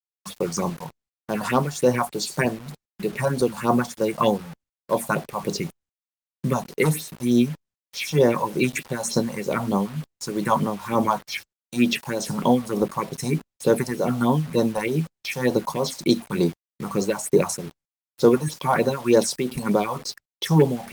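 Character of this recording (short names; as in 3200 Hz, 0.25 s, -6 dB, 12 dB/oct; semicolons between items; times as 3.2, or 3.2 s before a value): tremolo triangle 2.2 Hz, depth 70%; phasing stages 4, 3.3 Hz, lowest notch 340–2500 Hz; a quantiser's noise floor 8-bit, dither none; Opus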